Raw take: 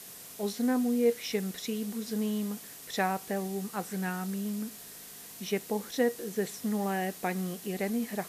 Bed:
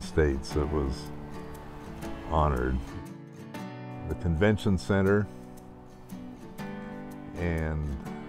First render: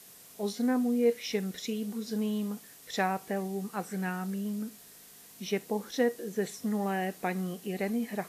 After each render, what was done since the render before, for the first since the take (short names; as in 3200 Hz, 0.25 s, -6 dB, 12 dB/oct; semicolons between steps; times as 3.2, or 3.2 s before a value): noise print and reduce 6 dB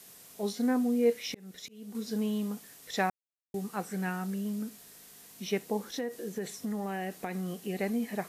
1.29–1.95 auto swell 0.473 s; 3.1–3.54 mute; 5.87–7.57 compressor, threshold -30 dBFS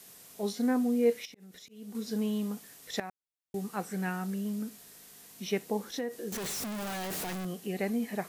1.25–1.76 compressor 8:1, threshold -47 dBFS; 3–3.57 fade in, from -16.5 dB; 6.32–7.45 infinite clipping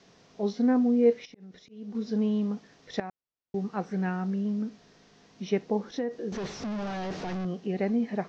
steep low-pass 6100 Hz 48 dB/oct; tilt shelf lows +5 dB, about 1400 Hz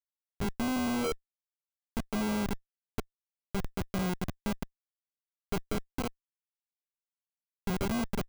Schmitt trigger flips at -26.5 dBFS; sample-rate reducer 1800 Hz, jitter 0%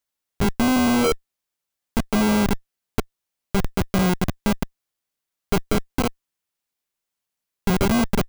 gain +12 dB